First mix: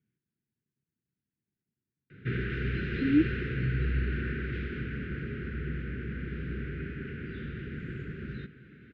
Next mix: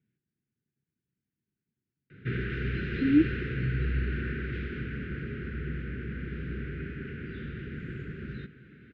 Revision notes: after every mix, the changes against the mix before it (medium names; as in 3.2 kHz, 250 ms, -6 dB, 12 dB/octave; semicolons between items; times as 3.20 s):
reverb: on, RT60 0.60 s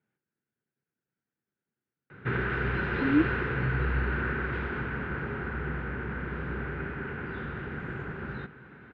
speech: add bass shelf 200 Hz -11 dB; master: remove Butterworth band-stop 860 Hz, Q 0.53